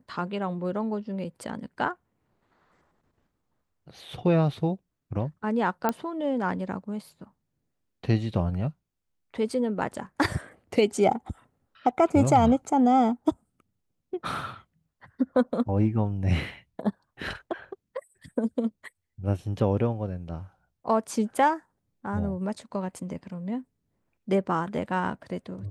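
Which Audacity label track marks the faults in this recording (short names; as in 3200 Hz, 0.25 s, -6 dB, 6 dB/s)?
5.890000	5.890000	pop -11 dBFS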